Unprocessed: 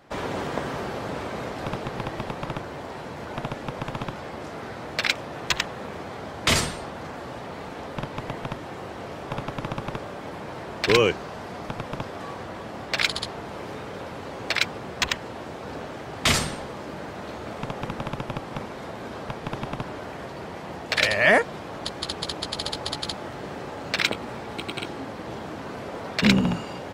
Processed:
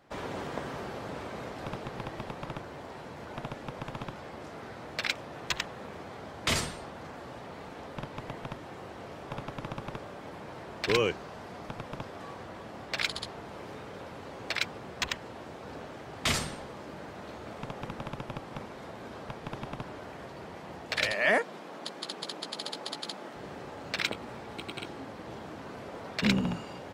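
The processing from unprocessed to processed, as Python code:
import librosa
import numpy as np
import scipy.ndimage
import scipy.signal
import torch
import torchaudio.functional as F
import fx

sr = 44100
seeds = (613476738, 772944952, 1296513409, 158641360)

y = fx.highpass(x, sr, hz=180.0, slope=24, at=(21.12, 23.36))
y = y * 10.0 ** (-7.5 / 20.0)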